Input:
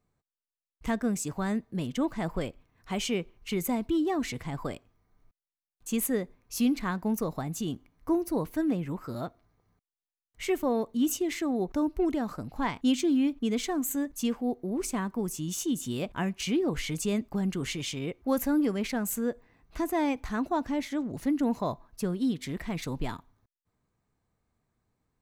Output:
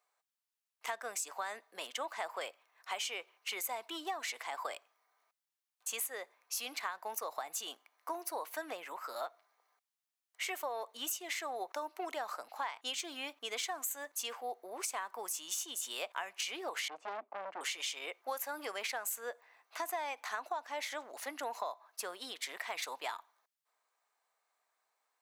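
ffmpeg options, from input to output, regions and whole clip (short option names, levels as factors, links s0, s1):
-filter_complex "[0:a]asettb=1/sr,asplit=3[s0][s1][s2];[s0]atrim=end=16.884[s3];[s1]atrim=start=16.88:end=17.61,asetpts=PTS-STARTPTS,afade=t=in:d=0.004:c=qsin,afade=t=out:st=0.726:d=0.004:c=qsin,equalizer=f=260:w=1.1:g=6.5,asoftclip=type=hard:threshold=0.0355,adynamicsmooth=sensitivity=1.5:basefreq=780[s4];[s2]atrim=start=17.606[s5];[s3][s4]acrossfade=d=0.004:c1=hsin:c2=qsin[s6];[s6][s5]acrossfade=d=0.004:c1=qsin:c2=hsin,highpass=f=660:w=0.5412,highpass=f=660:w=1.3066,acompressor=threshold=0.0126:ratio=12,volume=1.5"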